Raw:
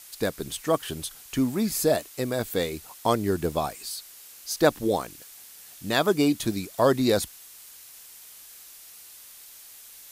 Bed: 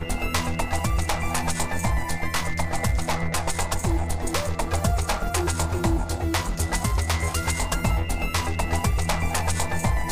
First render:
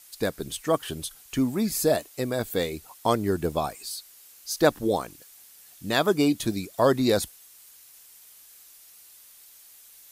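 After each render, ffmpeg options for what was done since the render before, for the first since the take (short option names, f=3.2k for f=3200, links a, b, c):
-af "afftdn=nr=6:nf=-48"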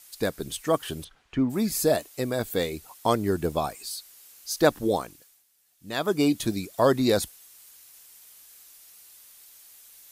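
-filter_complex "[0:a]asplit=3[a][b][c];[a]afade=t=out:st=1.03:d=0.02[d];[b]lowpass=2.2k,afade=t=in:st=1.03:d=0.02,afade=t=out:st=1.49:d=0.02[e];[c]afade=t=in:st=1.49:d=0.02[f];[d][e][f]amix=inputs=3:normalize=0,asplit=3[g][h][i];[g]atrim=end=5.44,asetpts=PTS-STARTPTS,afade=t=out:st=4.96:d=0.48:silence=0.16788[j];[h]atrim=start=5.44:end=5.78,asetpts=PTS-STARTPTS,volume=-15.5dB[k];[i]atrim=start=5.78,asetpts=PTS-STARTPTS,afade=t=in:d=0.48:silence=0.16788[l];[j][k][l]concat=n=3:v=0:a=1"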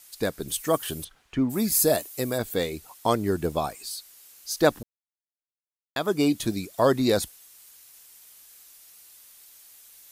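-filter_complex "[0:a]asettb=1/sr,asplit=3[a][b][c];[a]atrim=end=0.484[d];[b]atrim=start=0.48:end=2.38,asetpts=PTS-STARTPTS,afade=t=in:d=0.004:c=qsin,afade=t=out:st=1.896:d=0.004:c=qsin,highshelf=f=8.6k:g=12[e];[c]atrim=start=2.376[f];[d][e]acrossfade=d=0.004:c1=hsin:c2=qsin[g];[g][f]acrossfade=d=0.004:c1=qsin:c2=hsin,asplit=3[h][i][j];[h]atrim=end=4.83,asetpts=PTS-STARTPTS,afade=t=out:st=4.826:d=0.004:c=hsin[k];[i]atrim=start=4.83:end=5.96,asetpts=PTS-STARTPTS,volume=0[l];[j]atrim=start=5.96,asetpts=PTS-STARTPTS,afade=t=in:d=0.004:c=hsin[m];[k][l][m]concat=n=3:v=0:a=1"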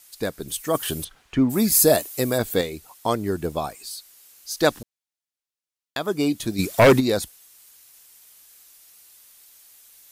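-filter_complex "[0:a]asettb=1/sr,asplit=3[a][b][c];[a]atrim=end=4.604[d];[b]atrim=start=4.6:end=5.97,asetpts=PTS-STARTPTS,afade=t=in:d=0.004:c=qsin,afade=t=out:st=1.366:d=0.004:c=qsin,equalizer=f=5.1k:w=0.36:g=6[e];[c]atrim=start=5.966[f];[d][e]acrossfade=d=0.004:c1=hsin:c2=qsin[g];[g][f]acrossfade=d=0.004:c1=qsin:c2=hsin,asplit=3[h][i][j];[h]afade=t=out:st=6.58:d=0.02[k];[i]aeval=exprs='0.398*sin(PI/2*2.51*val(0)/0.398)':c=same,afade=t=in:st=6.58:d=0.02,afade=t=out:st=6.99:d=0.02[l];[j]afade=t=in:st=6.99:d=0.02[m];[k][l][m]amix=inputs=3:normalize=0,asplit=3[n][o][p];[n]atrim=end=0.752[q];[o]atrim=start=0.748:end=2.612,asetpts=PTS-STARTPTS,volume=5dB[r];[p]atrim=start=2.608[s];[q][r]acrossfade=d=0.004:c1=hsin:c2=hsin[t];[t][s]acrossfade=d=0.004:c1=hsin:c2=hsin"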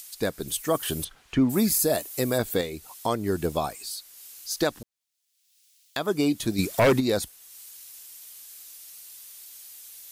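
-filter_complex "[0:a]acrossover=split=2500[a][b];[b]acompressor=mode=upward:threshold=-37dB:ratio=2.5[c];[a][c]amix=inputs=2:normalize=0,alimiter=limit=-13dB:level=0:latency=1:release=291"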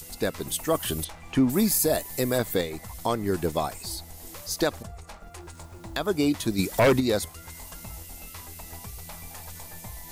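-filter_complex "[1:a]volume=-19dB[a];[0:a][a]amix=inputs=2:normalize=0"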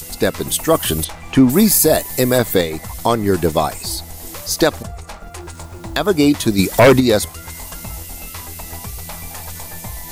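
-af "volume=10.5dB"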